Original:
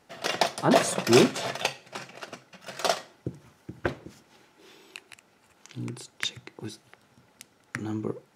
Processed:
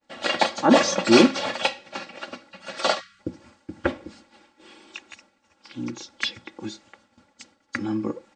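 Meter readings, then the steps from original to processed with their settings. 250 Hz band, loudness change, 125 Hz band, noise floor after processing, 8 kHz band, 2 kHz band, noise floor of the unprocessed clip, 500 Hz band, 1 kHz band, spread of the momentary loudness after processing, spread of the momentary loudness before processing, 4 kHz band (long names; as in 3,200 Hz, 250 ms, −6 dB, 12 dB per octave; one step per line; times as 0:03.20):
+6.0 dB, +4.0 dB, −2.5 dB, −67 dBFS, +0.5 dB, +5.0 dB, −63 dBFS, +3.0 dB, +4.5 dB, 22 LU, 23 LU, +4.5 dB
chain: hearing-aid frequency compression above 3,000 Hz 1.5 to 1
downward expander −54 dBFS
parametric band 8,300 Hz +2.5 dB 0.35 octaves
comb filter 3.6 ms, depth 87%
time-frequency box erased 0:03.00–0:03.20, 200–1,100 Hz
level +2.5 dB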